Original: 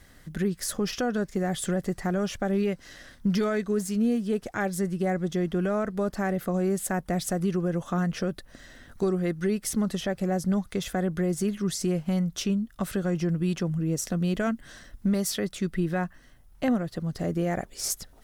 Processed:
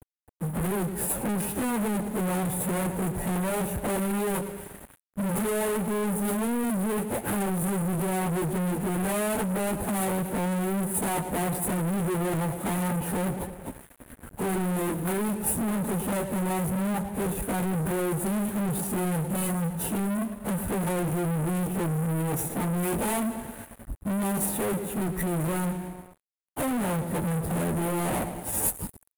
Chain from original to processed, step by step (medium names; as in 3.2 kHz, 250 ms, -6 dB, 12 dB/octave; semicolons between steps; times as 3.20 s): median filter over 41 samples; power-law waveshaper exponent 1.4; expander -59 dBFS; in parallel at +0.5 dB: compressor with a negative ratio -32 dBFS, ratio -0.5; on the sum: plain phase-vocoder stretch 1.6×; high-pass 46 Hz 12 dB/octave; peaking EQ 880 Hz +11.5 dB 0.27 oct; peak limiter -26.5 dBFS, peak gain reduction 11.5 dB; on a send: feedback delay 110 ms, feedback 57%, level -18 dB; on the sum: waveshaping leveller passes 5; crossover distortion -55.5 dBFS; resonant high shelf 7.5 kHz +13.5 dB, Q 3